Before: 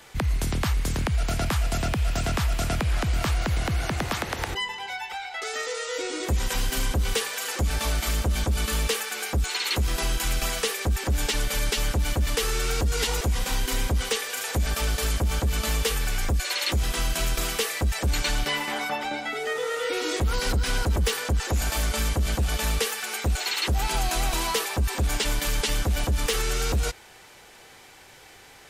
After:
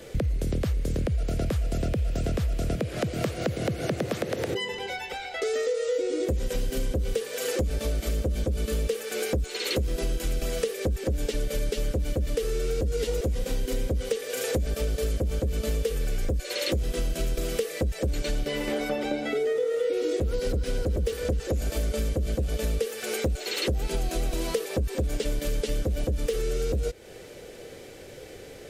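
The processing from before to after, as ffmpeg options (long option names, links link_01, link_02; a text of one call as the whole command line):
ffmpeg -i in.wav -filter_complex "[0:a]asettb=1/sr,asplit=3[link_01][link_02][link_03];[link_01]atrim=end=2.764[link_04];[link_02]atrim=start=2.76:end=4.72,asetpts=PTS-STARTPTS,afade=type=in:duration=0.004:curve=qsin,afade=type=out:start_time=1.956:duration=0.004:curve=qsin,highpass=frequency=110:width=0.5412,highpass=frequency=110:width=1.3066[link_05];[link_03]atrim=start=4.716[link_06];[link_04][link_05]acrossfade=duration=0.004:curve1=hsin:curve2=qsin[link_07];[link_07][link_06]acrossfade=duration=0.004:curve1=qsin:curve2=hsin,asettb=1/sr,asplit=3[link_08][link_09][link_10];[link_08]atrim=end=18.214[link_11];[link_09]atrim=start=18.21:end=21.49,asetpts=PTS-STARTPTS,afade=type=in:duration=0.004:curve=qsin,afade=type=out:start_time=3.276:duration=0.004:curve=qsin,aecho=1:1:255|510|765:0.126|0.0529|0.0222,atrim=end_sample=144648[link_12];[link_10]atrim=start=21.486[link_13];[link_11][link_12]acrossfade=duration=0.004:curve1=hsin:curve2=qsin[link_14];[link_14][link_13]acrossfade=duration=0.004:curve1=qsin:curve2=hsin,lowshelf=frequency=680:width_type=q:width=3:gain=9,acompressor=threshold=-25dB:ratio=5" out.wav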